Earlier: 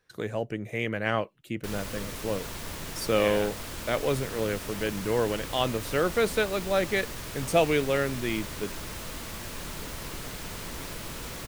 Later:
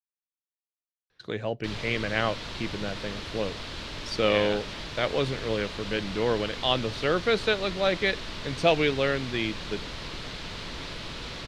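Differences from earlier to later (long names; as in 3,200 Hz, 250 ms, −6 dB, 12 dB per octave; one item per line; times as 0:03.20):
speech: entry +1.10 s
master: add low-pass with resonance 4,000 Hz, resonance Q 2.1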